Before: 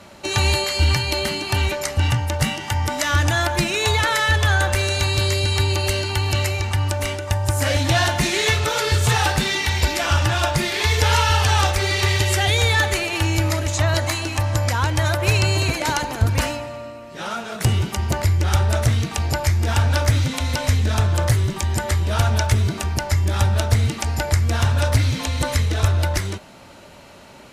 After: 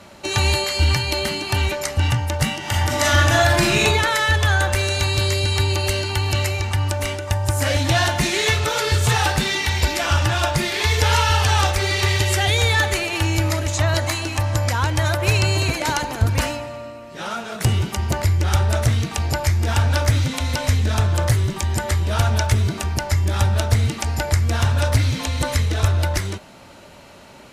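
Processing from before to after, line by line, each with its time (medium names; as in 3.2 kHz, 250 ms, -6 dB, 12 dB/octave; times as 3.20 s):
2.59–3.81 s: reverb throw, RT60 0.96 s, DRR -3 dB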